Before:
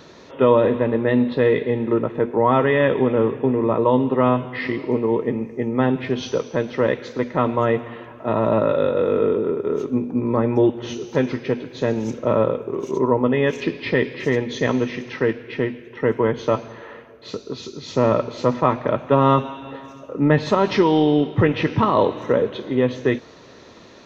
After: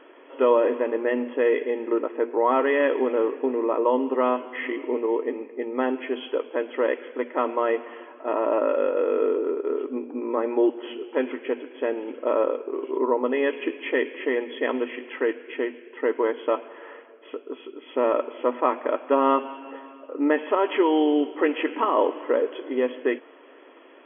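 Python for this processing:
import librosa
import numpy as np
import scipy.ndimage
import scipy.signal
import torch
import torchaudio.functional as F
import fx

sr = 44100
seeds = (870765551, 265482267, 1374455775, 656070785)

y = fx.brickwall_bandpass(x, sr, low_hz=250.0, high_hz=3400.0)
y = y * 10.0 ** (-3.5 / 20.0)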